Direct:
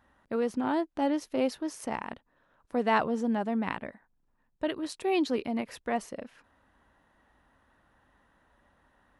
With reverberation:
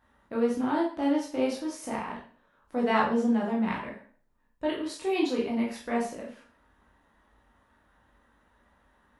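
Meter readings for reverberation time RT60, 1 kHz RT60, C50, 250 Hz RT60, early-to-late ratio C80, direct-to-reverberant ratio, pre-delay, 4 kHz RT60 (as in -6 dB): 0.45 s, 0.40 s, 5.0 dB, 0.50 s, 10.0 dB, -4.0 dB, 6 ms, 0.40 s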